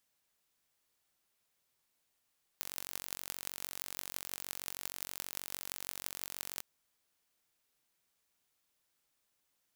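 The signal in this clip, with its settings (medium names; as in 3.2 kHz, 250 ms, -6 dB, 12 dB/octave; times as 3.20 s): pulse train 46.3 per s, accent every 8, -9.5 dBFS 4.01 s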